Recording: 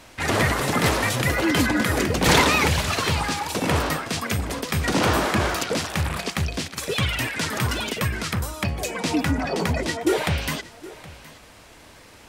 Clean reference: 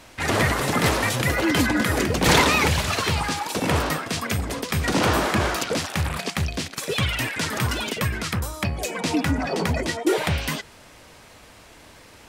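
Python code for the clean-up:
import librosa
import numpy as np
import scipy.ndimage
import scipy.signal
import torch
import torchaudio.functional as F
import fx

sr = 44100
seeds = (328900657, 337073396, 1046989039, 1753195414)

y = fx.fix_echo_inverse(x, sr, delay_ms=769, level_db=-19.0)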